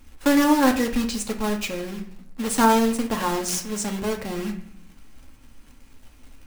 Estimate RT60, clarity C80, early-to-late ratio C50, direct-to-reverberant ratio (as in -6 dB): 0.60 s, 13.5 dB, 10.5 dB, 3.0 dB